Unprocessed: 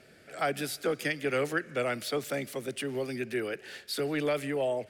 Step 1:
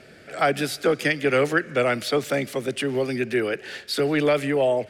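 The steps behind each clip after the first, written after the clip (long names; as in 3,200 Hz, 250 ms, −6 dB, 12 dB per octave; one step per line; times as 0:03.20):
high-shelf EQ 9,900 Hz −11 dB
level +9 dB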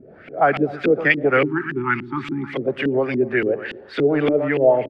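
repeating echo 120 ms, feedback 41%, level −12 dB
time-frequency box erased 0:01.45–0:02.54, 400–800 Hz
auto-filter low-pass saw up 3.5 Hz 260–3,000 Hz
level +1.5 dB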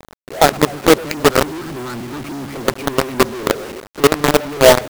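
running median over 25 samples
log-companded quantiser 2 bits
level −1 dB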